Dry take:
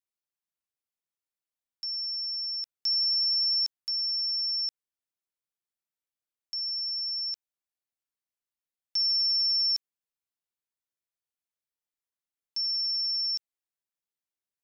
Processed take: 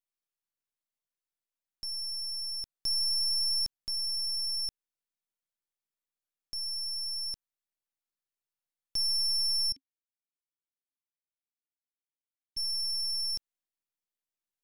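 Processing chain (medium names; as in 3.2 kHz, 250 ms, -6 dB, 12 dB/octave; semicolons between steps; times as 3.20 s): partial rectifier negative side -12 dB; 9.72–12.57 s: vowel filter i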